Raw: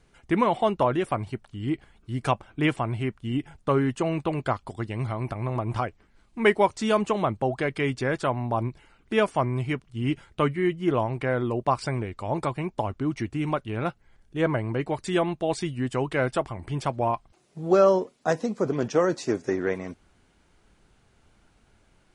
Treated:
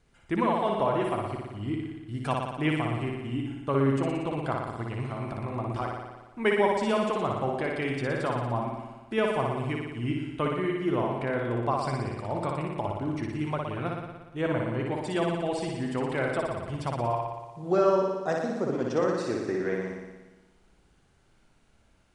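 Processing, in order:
dynamic equaliser 6,500 Hz, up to −6 dB, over −59 dBFS, Q 3.3
on a send: flutter between parallel walls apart 10.1 metres, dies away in 1.2 s
on the sum: level −5.5 dB

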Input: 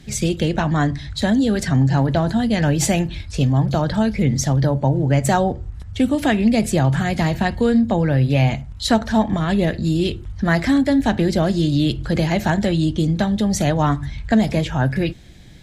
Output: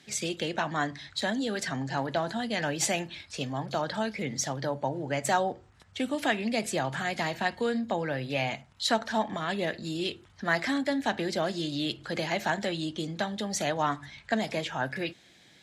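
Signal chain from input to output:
meter weighting curve A
level −6 dB

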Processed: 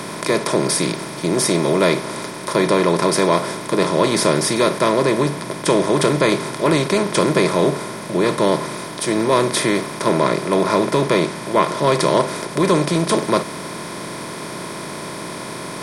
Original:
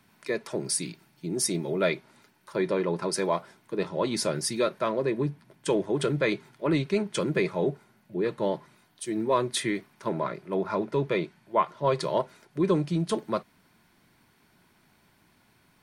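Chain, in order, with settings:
compressor on every frequency bin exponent 0.4
level +4 dB

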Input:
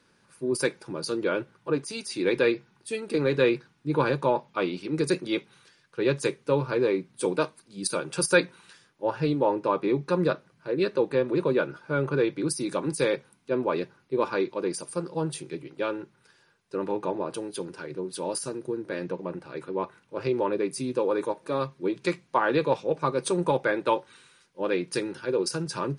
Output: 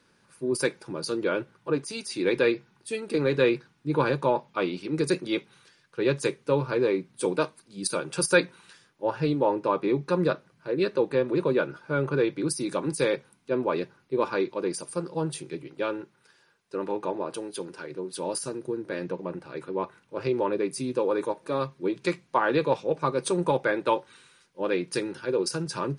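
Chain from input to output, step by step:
0:16.01–0:18.19: low-shelf EQ 140 Hz −9 dB

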